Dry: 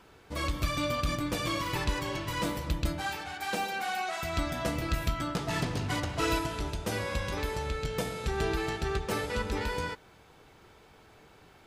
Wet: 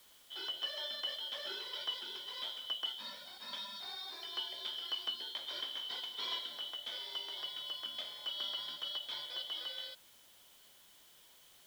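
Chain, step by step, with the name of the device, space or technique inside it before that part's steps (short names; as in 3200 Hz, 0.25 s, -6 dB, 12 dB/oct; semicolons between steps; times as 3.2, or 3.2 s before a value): split-band scrambled radio (four-band scrambler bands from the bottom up 3412; BPF 400–2800 Hz; white noise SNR 20 dB); gain -6 dB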